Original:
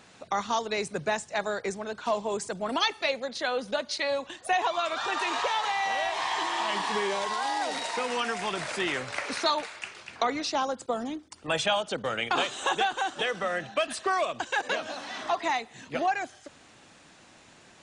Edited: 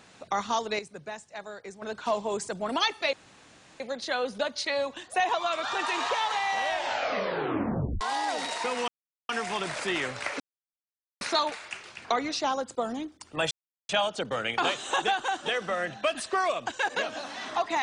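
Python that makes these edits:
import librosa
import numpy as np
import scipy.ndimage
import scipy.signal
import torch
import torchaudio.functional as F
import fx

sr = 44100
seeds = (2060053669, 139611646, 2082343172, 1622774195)

y = fx.edit(x, sr, fx.clip_gain(start_s=0.79, length_s=1.03, db=-10.5),
    fx.insert_room_tone(at_s=3.13, length_s=0.67),
    fx.tape_stop(start_s=6.02, length_s=1.32),
    fx.insert_silence(at_s=8.21, length_s=0.41),
    fx.insert_silence(at_s=9.32, length_s=0.81),
    fx.insert_silence(at_s=11.62, length_s=0.38), tone=tone)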